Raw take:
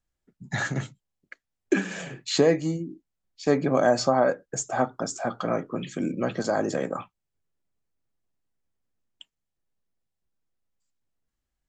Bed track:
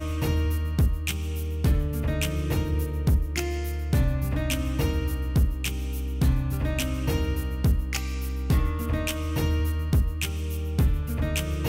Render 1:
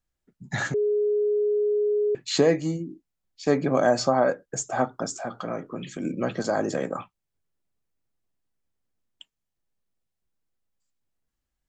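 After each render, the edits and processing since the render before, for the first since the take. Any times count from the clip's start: 0.74–2.15 bleep 417 Hz -20 dBFS; 5.13–6.05 compressor 1.5:1, threshold -34 dBFS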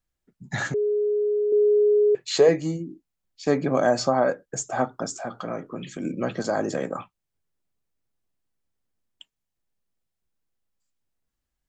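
1.52–2.49 resonant low shelf 340 Hz -6 dB, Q 3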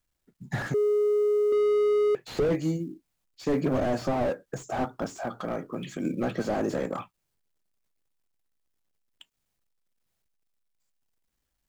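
companded quantiser 8-bit; slew limiter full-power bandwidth 35 Hz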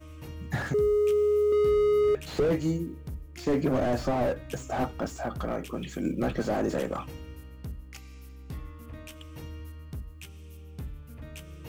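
add bed track -16.5 dB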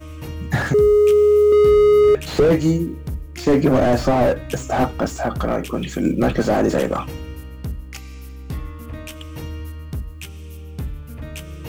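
gain +10.5 dB

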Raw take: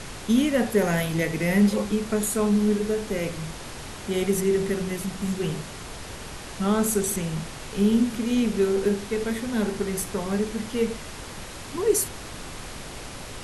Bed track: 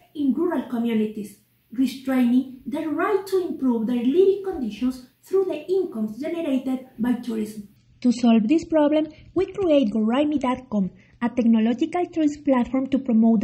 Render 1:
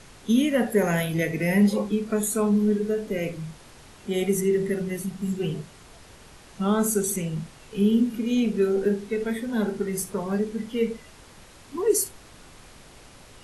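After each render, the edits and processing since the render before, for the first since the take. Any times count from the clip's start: noise print and reduce 11 dB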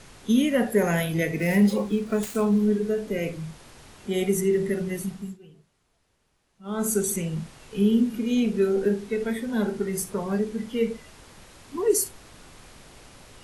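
1.38–2.66 switching dead time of 0.053 ms; 5.09–6.92 dip -22 dB, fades 0.29 s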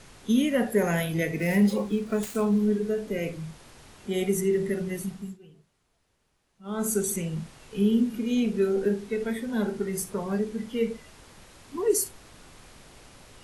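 gain -2 dB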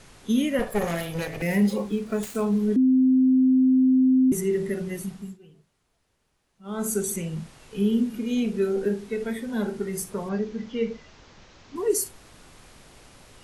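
0.59–1.42 minimum comb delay 1.7 ms; 2.76–4.32 bleep 259 Hz -15 dBFS; 10.29–11.76 steep low-pass 6600 Hz 48 dB/oct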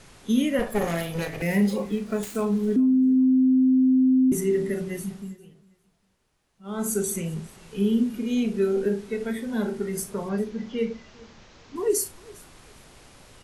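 doubler 36 ms -13 dB; feedback echo 0.402 s, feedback 23%, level -23.5 dB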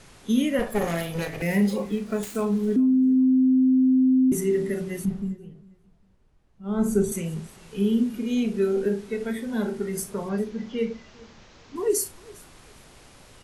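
5.05–7.12 tilt -3 dB/oct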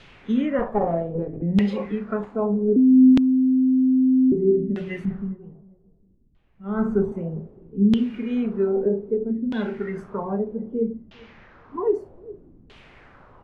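LFO low-pass saw down 0.63 Hz 220–3300 Hz

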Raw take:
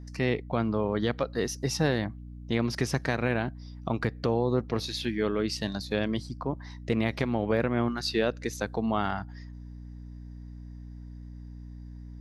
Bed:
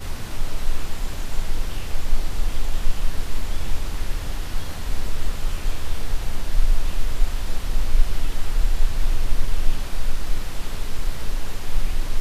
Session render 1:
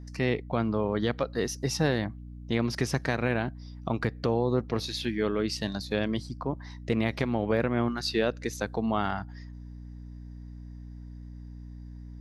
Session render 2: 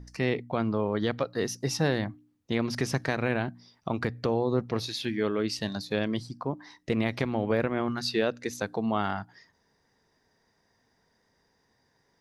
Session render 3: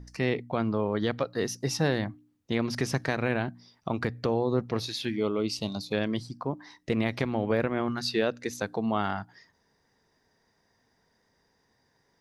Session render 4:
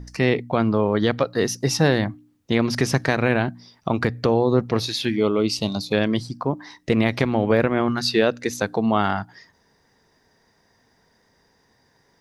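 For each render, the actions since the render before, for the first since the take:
nothing audible
de-hum 60 Hz, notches 5
5.16–5.93 Butterworth band-stop 1700 Hz, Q 2.1
gain +8 dB

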